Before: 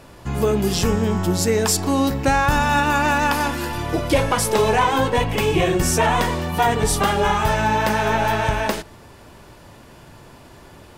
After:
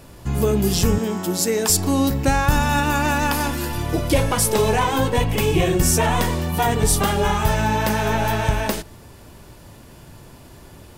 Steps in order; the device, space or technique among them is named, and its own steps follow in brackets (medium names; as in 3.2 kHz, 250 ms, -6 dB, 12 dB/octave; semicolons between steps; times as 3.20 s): 0.98–1.70 s: Bessel high-pass 240 Hz, order 4; smiley-face EQ (bass shelf 180 Hz +4 dB; peaking EQ 1.2 kHz -3.5 dB 2.7 oct; treble shelf 9.6 kHz +8.5 dB)